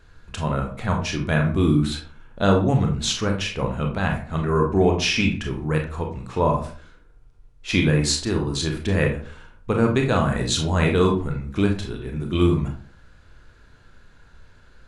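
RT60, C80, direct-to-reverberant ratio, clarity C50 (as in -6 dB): 0.45 s, 12.5 dB, 1.5 dB, 7.0 dB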